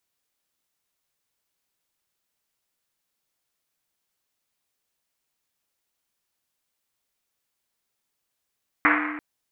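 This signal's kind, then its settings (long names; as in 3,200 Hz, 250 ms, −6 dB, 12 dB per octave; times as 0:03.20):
drum after Risset length 0.34 s, pitch 300 Hz, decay 1.92 s, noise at 1,600 Hz, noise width 1,300 Hz, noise 60%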